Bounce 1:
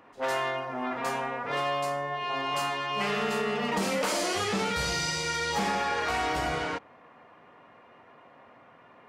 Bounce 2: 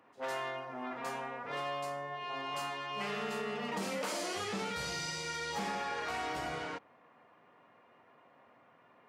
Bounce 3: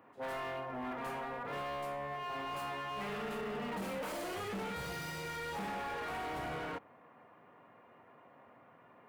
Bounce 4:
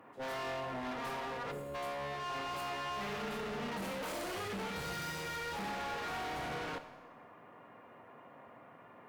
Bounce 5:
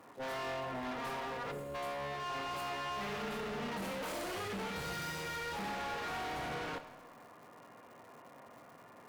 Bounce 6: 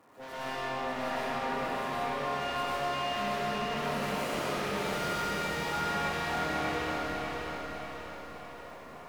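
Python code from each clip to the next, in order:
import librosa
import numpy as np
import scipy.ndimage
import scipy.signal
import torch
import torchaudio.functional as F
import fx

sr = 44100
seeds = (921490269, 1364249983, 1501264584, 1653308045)

y1 = scipy.signal.sosfilt(scipy.signal.butter(2, 92.0, 'highpass', fs=sr, output='sos'), x)
y1 = F.gain(torch.from_numpy(y1), -8.5).numpy()
y2 = fx.low_shelf(y1, sr, hz=150.0, db=4.5)
y2 = np.clip(y2, -10.0 ** (-39.5 / 20.0), 10.0 ** (-39.5 / 20.0))
y2 = fx.peak_eq(y2, sr, hz=5700.0, db=-11.0, octaves=1.6)
y2 = F.gain(torch.from_numpy(y2), 3.0).numpy()
y3 = fx.spec_box(y2, sr, start_s=1.52, length_s=0.23, low_hz=560.0, high_hz=6500.0, gain_db=-21)
y3 = fx.clip_asym(y3, sr, top_db=-45.5, bottom_db=-40.0)
y3 = fx.rev_schroeder(y3, sr, rt60_s=1.1, comb_ms=27, drr_db=10.5)
y3 = F.gain(torch.from_numpy(y3), 4.0).numpy()
y4 = fx.dmg_crackle(y3, sr, seeds[0], per_s=310.0, level_db=-52.0)
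y5 = fx.echo_feedback(y4, sr, ms=595, feedback_pct=50, wet_db=-4.0)
y5 = fx.rev_freeverb(y5, sr, rt60_s=2.7, hf_ratio=0.85, predelay_ms=70, drr_db=-9.0)
y5 = F.gain(torch.from_numpy(y5), -4.5).numpy()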